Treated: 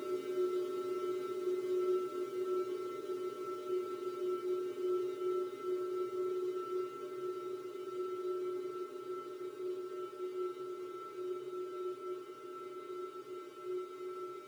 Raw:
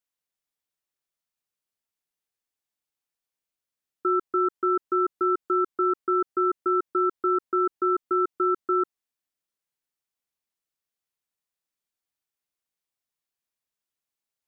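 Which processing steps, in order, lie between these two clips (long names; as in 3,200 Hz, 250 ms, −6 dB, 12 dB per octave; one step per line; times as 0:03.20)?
feedback delay that plays each chunk backwards 460 ms, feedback 56%, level −0.5 dB
centre clipping without the shift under −47.5 dBFS
hollow resonant body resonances 260/400 Hz, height 16 dB, ringing for 45 ms
on a send: echo through a band-pass that steps 168 ms, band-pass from 160 Hz, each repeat 1.4 octaves, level −3 dB
on the sum: extreme stretch with random phases 46×, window 1.00 s, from 0:11.79
level +6 dB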